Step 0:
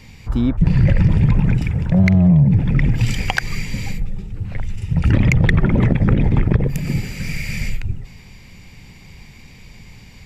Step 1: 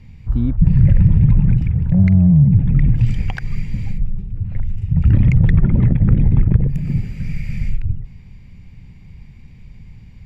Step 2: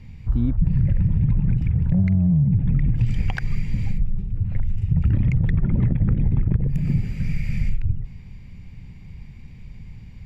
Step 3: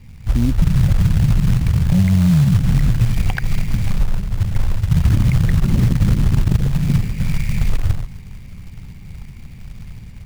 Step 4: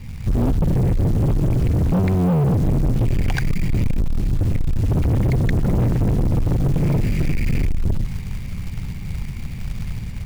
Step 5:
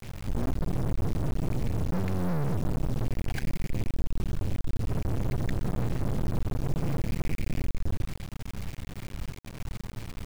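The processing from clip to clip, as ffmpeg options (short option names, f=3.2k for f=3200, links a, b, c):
-af "bass=f=250:g=14,treble=f=4k:g=-9,volume=-10.5dB"
-af "acompressor=threshold=-15dB:ratio=6"
-af "dynaudnorm=f=150:g=3:m=5dB,acrusher=bits=5:mode=log:mix=0:aa=0.000001"
-filter_complex "[0:a]asplit=2[a][b];[b]alimiter=limit=-13dB:level=0:latency=1:release=130,volume=2dB[c];[a][c]amix=inputs=2:normalize=0,asoftclip=type=hard:threshold=-15.5dB"
-af "acrusher=bits=3:dc=4:mix=0:aa=0.000001,volume=-7dB"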